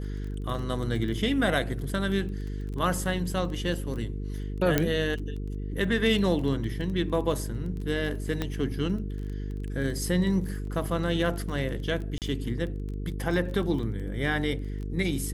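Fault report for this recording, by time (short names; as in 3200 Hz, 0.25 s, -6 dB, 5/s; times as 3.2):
buzz 50 Hz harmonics 9 -33 dBFS
crackle 16/s -34 dBFS
4.78 pop -8 dBFS
8.42 pop -15 dBFS
10.67 gap 2.8 ms
12.18–12.22 gap 38 ms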